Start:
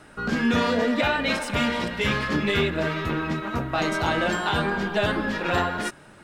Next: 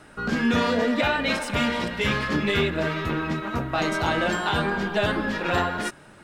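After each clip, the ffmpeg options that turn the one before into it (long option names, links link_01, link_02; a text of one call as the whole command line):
ffmpeg -i in.wav -af anull out.wav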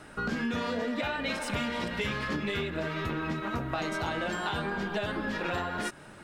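ffmpeg -i in.wav -af "acompressor=threshold=-29dB:ratio=6" out.wav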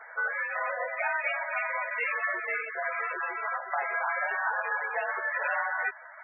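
ffmpeg -i in.wav -af "crystalizer=i=8:c=0,highpass=frequency=490:width_type=q:width=0.5412,highpass=frequency=490:width_type=q:width=1.307,lowpass=frequency=2200:width_type=q:width=0.5176,lowpass=frequency=2200:width_type=q:width=0.7071,lowpass=frequency=2200:width_type=q:width=1.932,afreqshift=56" -ar 24000 -c:a libmp3lame -b:a 8k out.mp3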